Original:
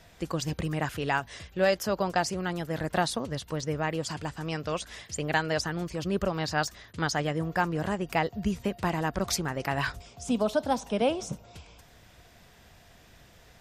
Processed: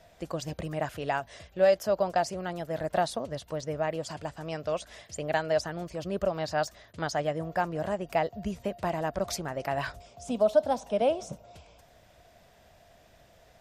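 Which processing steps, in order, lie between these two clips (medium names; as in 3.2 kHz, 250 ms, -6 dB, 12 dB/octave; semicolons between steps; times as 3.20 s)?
peaking EQ 630 Hz +11.5 dB 0.53 oct; trim -5.5 dB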